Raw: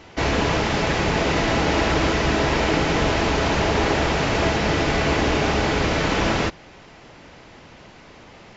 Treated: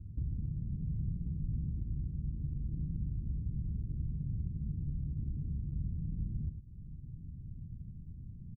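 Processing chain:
inverse Chebyshev low-pass filter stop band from 890 Hz, stop band 80 dB
downward compressor 4 to 1, threshold −44 dBFS, peak gain reduction 19.5 dB
on a send: single-tap delay 105 ms −8 dB
on the sum: level +7.5 dB

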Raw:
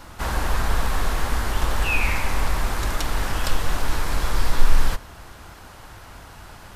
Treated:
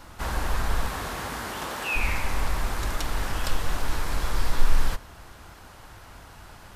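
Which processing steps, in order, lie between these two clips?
0:00.86–0:01.95: high-pass filter 60 Hz → 250 Hz 12 dB per octave
level −4 dB

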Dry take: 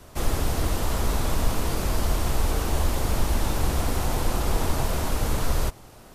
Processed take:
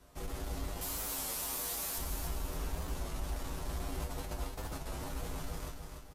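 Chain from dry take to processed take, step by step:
0:00.81–0:01.98: RIAA equalisation recording
0:04.00–0:04.92: compressor whose output falls as the input rises −25 dBFS, ratio −0.5
soft clipping −18.5 dBFS, distortion −15 dB
tuned comb filter 54 Hz, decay 0.19 s, harmonics odd, mix 90%
repeating echo 292 ms, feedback 42%, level −6 dB
wow of a warped record 33 1/3 rpm, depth 100 cents
level −6 dB

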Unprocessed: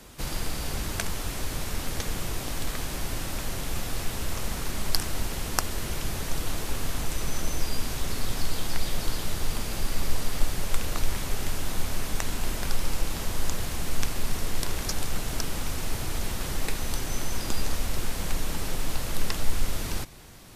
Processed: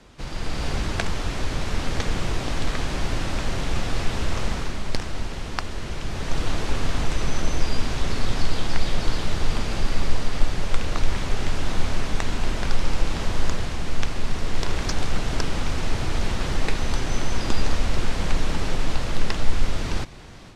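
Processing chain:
stylus tracing distortion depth 0.12 ms
automatic gain control gain up to 8 dB
high-frequency loss of the air 98 metres
level −1 dB

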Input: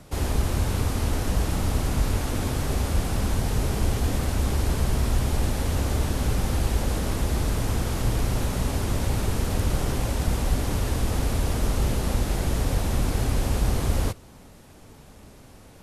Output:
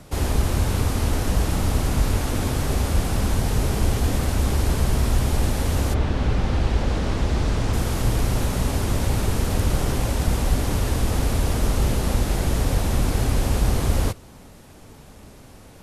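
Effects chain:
0:05.93–0:07.72: low-pass filter 3,300 Hz → 6,400 Hz 12 dB per octave
level +3 dB

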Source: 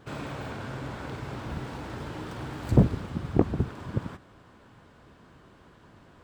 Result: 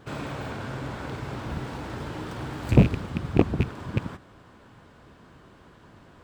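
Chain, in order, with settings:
loose part that buzzes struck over −24 dBFS, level −23 dBFS
level +2.5 dB

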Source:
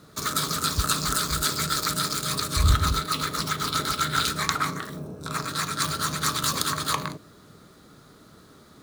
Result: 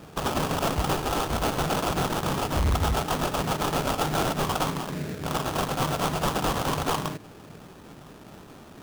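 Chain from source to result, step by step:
0:00.96–0:01.58: lower of the sound and its delayed copy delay 2.3 ms
in parallel at −1.5 dB: downward compressor, threshold −35 dBFS, peak gain reduction 19.5 dB
on the sum: sample-rate reduction 2,100 Hz, jitter 20%
hard clipping −20 dBFS, distortion −10 dB

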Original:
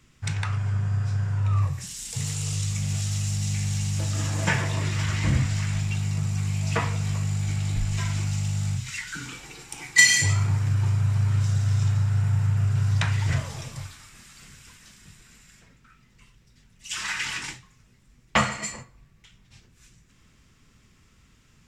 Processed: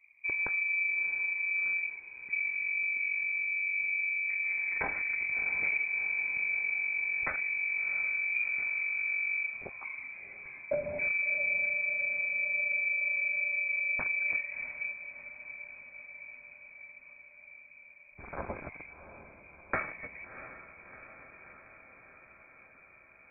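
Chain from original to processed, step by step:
adaptive Wiener filter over 41 samples
downward compressor 6 to 1, threshold −25 dBFS, peak gain reduction 13.5 dB
voice inversion scrambler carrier 2,600 Hz
feedback delay with all-pass diffusion 641 ms, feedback 69%, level −12 dB
speed change −7%
level −3.5 dB

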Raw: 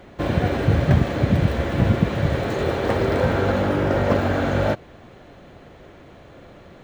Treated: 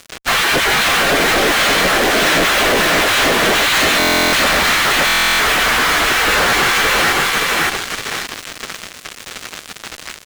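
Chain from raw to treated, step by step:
brickwall limiter −17 dBFS, peak gain reduction 11 dB
downward compressor 6 to 1, threshold −26 dBFS, peak gain reduction 6 dB
low-shelf EQ 200 Hz +6.5 dB
time stretch by phase vocoder 1.5×
mains-hum notches 50/100/150/200/250 Hz
gate on every frequency bin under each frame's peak −20 dB weak
on a send: repeating echo 570 ms, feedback 37%, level −3.5 dB
on the sum: fuzz pedal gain 53 dB, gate −53 dBFS
parametric band 900 Hz −5 dB 0.46 octaves
buffer that repeats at 0:03.98/0:05.05, samples 1,024, times 14
level +2.5 dB

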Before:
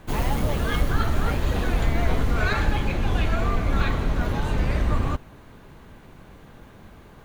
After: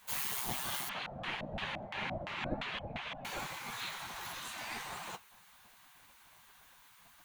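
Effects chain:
drawn EQ curve 210 Hz 0 dB, 310 Hz +9 dB, 570 Hz +10 dB, 1,200 Hz −7 dB, 10,000 Hz −1 dB
flanger 1.8 Hz, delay 7.9 ms, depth 7.5 ms, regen −48%
spectral tilt +2.5 dB per octave
0:00.89–0:03.25: auto-filter low-pass square 2.9 Hz 420–2,700 Hz
gate on every frequency bin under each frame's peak −15 dB weak

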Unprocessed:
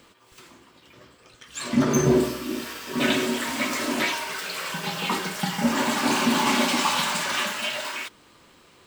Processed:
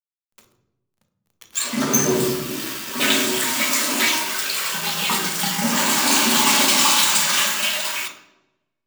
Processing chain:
slack as between gear wheels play −35 dBFS
RIAA equalisation recording
mains-hum notches 60/120/180/240/300/360/420/480/540/600 Hz
on a send: convolution reverb RT60 1.0 s, pre-delay 3 ms, DRR 6 dB
on the sum: level +2 dB

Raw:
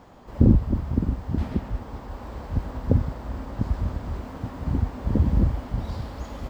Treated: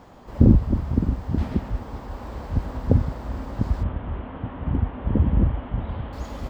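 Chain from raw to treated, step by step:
0:03.83–0:06.13: elliptic low-pass filter 3,200 Hz, stop band 60 dB
highs frequency-modulated by the lows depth 0.1 ms
level +2 dB

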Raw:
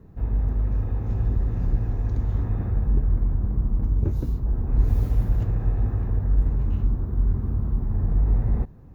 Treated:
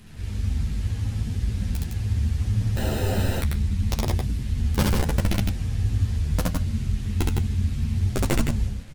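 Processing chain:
linear delta modulator 64 kbit/s, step −38 dBFS
flat-topped bell 630 Hz −9 dB 2.4 octaves
in parallel at +0.5 dB: brickwall limiter −18 dBFS, peak gain reduction 8 dB
on the sum: wrap-around overflow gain 8.5 dB
flanger 0.73 Hz, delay 7.4 ms, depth 6.9 ms, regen +66%
on a send: loudspeakers that aren't time-aligned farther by 23 metres −1 dB, 55 metres −4 dB
on the sum: frozen spectrum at 0:02.79, 0.62 s
string-ensemble chorus

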